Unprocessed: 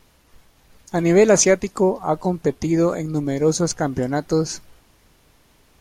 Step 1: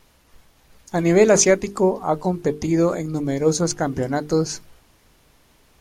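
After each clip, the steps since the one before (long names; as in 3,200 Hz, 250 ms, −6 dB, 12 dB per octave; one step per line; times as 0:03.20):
mains-hum notches 50/100/150/200/250/300/350/400/450 Hz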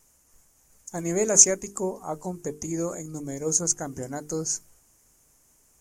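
high shelf with overshoot 5,200 Hz +10.5 dB, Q 3
level −11 dB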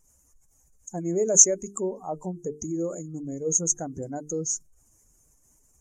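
expanding power law on the bin magnitudes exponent 1.7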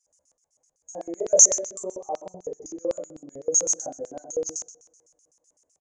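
coupled-rooms reverb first 0.46 s, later 2 s, from −25 dB, DRR −6 dB
auto-filter band-pass square 7.9 Hz 580–5,300 Hz
downsampling to 22,050 Hz
level −1.5 dB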